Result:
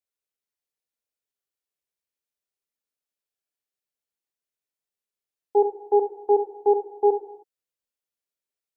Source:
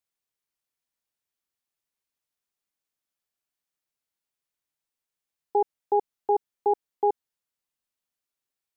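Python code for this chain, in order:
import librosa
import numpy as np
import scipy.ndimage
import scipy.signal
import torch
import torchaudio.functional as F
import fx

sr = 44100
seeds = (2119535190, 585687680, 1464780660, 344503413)

y = fx.graphic_eq_10(x, sr, hz=(125, 500, 1000), db=(-6, 5, -4))
y = fx.rev_gated(y, sr, seeds[0], gate_ms=340, shape='falling', drr_db=1.5)
y = fx.upward_expand(y, sr, threshold_db=-28.0, expansion=1.5)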